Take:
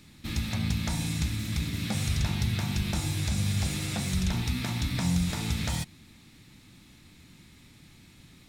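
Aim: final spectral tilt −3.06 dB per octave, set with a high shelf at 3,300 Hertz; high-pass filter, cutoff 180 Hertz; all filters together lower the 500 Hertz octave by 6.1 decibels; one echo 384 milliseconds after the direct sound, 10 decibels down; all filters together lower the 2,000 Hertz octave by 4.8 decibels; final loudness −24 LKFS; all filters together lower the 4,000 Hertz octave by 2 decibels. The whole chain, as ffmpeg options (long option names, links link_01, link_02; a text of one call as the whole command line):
ffmpeg -i in.wav -af "highpass=180,equalizer=frequency=500:width_type=o:gain=-8.5,equalizer=frequency=2000:width_type=o:gain=-6.5,highshelf=frequency=3300:gain=8,equalizer=frequency=4000:width_type=o:gain=-6.5,aecho=1:1:384:0.316,volume=8.5dB" out.wav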